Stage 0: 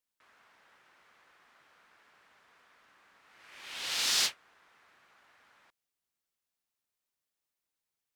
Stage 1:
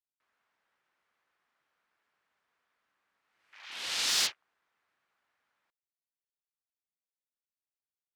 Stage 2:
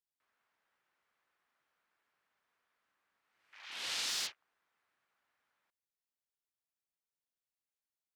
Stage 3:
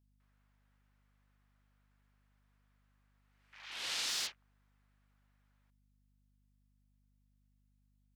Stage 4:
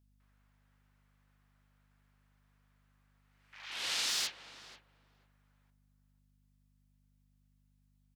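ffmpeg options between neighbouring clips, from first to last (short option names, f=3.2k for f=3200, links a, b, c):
-af "afwtdn=0.00316"
-af "acompressor=threshold=-31dB:ratio=6,volume=-2.5dB"
-af "aeval=exprs='val(0)+0.000251*(sin(2*PI*50*n/s)+sin(2*PI*2*50*n/s)/2+sin(2*PI*3*50*n/s)/3+sin(2*PI*4*50*n/s)/4+sin(2*PI*5*50*n/s)/5)':c=same"
-filter_complex "[0:a]asplit=2[a][b];[b]adelay=487,lowpass=f=1.2k:p=1,volume=-10.5dB,asplit=2[c][d];[d]adelay=487,lowpass=f=1.2k:p=1,volume=0.19,asplit=2[e][f];[f]adelay=487,lowpass=f=1.2k:p=1,volume=0.19[g];[a][c][e][g]amix=inputs=4:normalize=0,volume=3dB"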